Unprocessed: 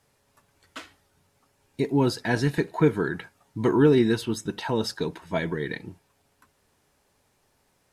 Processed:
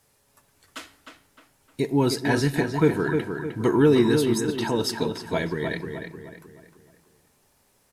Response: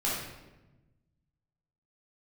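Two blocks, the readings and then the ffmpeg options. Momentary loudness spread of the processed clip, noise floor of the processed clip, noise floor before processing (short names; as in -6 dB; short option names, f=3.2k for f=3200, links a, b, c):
21 LU, -65 dBFS, -69 dBFS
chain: -filter_complex "[0:a]highshelf=f=6.8k:g=9.5,asplit=2[a][b];[b]adelay=307,lowpass=f=3k:p=1,volume=-5.5dB,asplit=2[c][d];[d]adelay=307,lowpass=f=3k:p=1,volume=0.43,asplit=2[e][f];[f]adelay=307,lowpass=f=3k:p=1,volume=0.43,asplit=2[g][h];[h]adelay=307,lowpass=f=3k:p=1,volume=0.43,asplit=2[i][j];[j]adelay=307,lowpass=f=3k:p=1,volume=0.43[k];[a][c][e][g][i][k]amix=inputs=6:normalize=0,asplit=2[l][m];[1:a]atrim=start_sample=2205[n];[m][n]afir=irnorm=-1:irlink=0,volume=-25.5dB[o];[l][o]amix=inputs=2:normalize=0"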